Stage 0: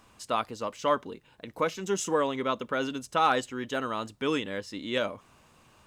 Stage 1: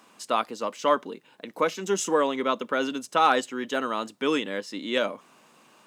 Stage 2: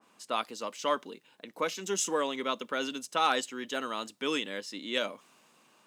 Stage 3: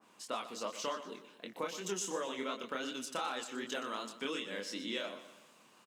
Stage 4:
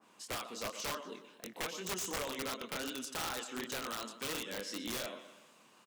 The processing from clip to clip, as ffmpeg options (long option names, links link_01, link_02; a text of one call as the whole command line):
ffmpeg -i in.wav -af "highpass=frequency=190:width=0.5412,highpass=frequency=190:width=1.3066,volume=3.5dB" out.wav
ffmpeg -i in.wav -af "adynamicequalizer=threshold=0.0112:dfrequency=2100:dqfactor=0.7:tfrequency=2100:tqfactor=0.7:attack=5:release=100:ratio=0.375:range=4:mode=boostabove:tftype=highshelf,volume=-7.5dB" out.wav
ffmpeg -i in.wav -filter_complex "[0:a]acompressor=threshold=-35dB:ratio=6,flanger=delay=22.5:depth=7.4:speed=2.7,asplit=2[link_01][link_02];[link_02]aecho=0:1:121|242|363|484:0.237|0.104|0.0459|0.0202[link_03];[link_01][link_03]amix=inputs=2:normalize=0,volume=3dB" out.wav
ffmpeg -i in.wav -af "aeval=exprs='(mod(35.5*val(0)+1,2)-1)/35.5':channel_layout=same" out.wav